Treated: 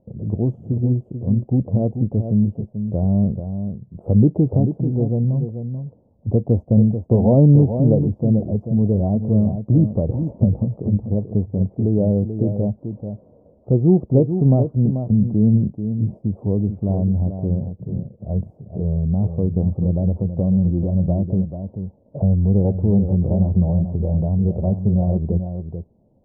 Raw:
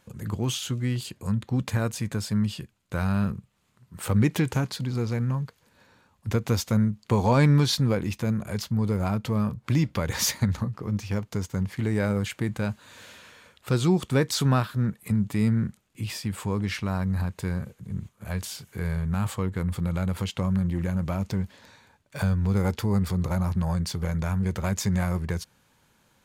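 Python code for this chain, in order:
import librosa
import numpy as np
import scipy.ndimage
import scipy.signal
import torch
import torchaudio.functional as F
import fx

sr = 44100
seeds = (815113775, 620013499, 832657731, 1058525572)

y = scipy.signal.sosfilt(scipy.signal.ellip(4, 1.0, 60, 670.0, 'lowpass', fs=sr, output='sos'), x)
y = y + 10.0 ** (-8.5 / 20.0) * np.pad(y, (int(437 * sr / 1000.0), 0))[:len(y)]
y = y * 10.0 ** (8.0 / 20.0)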